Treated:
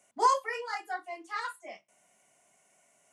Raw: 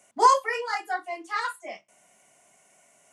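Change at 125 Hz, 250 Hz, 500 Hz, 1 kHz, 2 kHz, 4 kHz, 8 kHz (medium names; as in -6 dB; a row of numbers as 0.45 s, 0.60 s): no reading, -6.5 dB, -6.5 dB, -6.5 dB, -6.5 dB, -6.5 dB, -6.5 dB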